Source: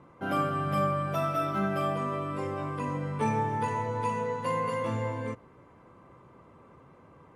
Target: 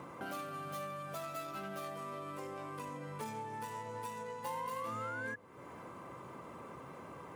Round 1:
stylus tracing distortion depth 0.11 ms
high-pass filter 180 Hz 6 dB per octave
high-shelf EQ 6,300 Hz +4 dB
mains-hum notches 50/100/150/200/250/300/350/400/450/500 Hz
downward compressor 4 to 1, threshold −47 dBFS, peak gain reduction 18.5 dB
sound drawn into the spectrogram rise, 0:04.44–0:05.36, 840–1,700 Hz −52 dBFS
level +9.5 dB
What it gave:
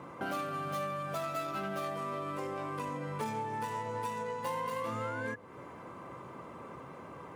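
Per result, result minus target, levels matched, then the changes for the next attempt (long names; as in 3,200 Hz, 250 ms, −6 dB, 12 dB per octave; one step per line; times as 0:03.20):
downward compressor: peak gain reduction −6.5 dB; 8,000 Hz band −3.5 dB
change: downward compressor 4 to 1, threshold −55.5 dBFS, peak gain reduction 25 dB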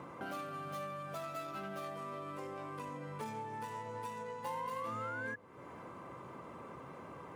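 8,000 Hz band −4.5 dB
change: high-shelf EQ 6,300 Hz +11.5 dB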